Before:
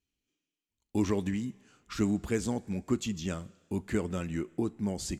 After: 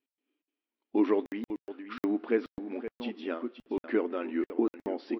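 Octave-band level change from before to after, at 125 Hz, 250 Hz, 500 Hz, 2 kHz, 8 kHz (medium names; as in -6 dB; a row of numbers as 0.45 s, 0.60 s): -18.5 dB, +0.5 dB, +4.5 dB, +1.0 dB, under -25 dB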